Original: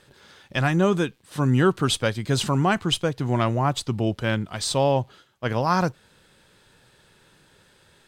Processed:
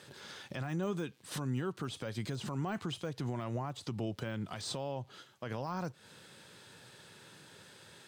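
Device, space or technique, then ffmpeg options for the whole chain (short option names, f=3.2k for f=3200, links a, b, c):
broadcast voice chain: -af "highpass=f=94:w=0.5412,highpass=f=94:w=1.3066,deesser=0.95,acompressor=threshold=-29dB:ratio=3,equalizer=f=5.9k:t=o:w=1.4:g=3,alimiter=level_in=4.5dB:limit=-24dB:level=0:latency=1:release=242,volume=-4.5dB,volume=1dB"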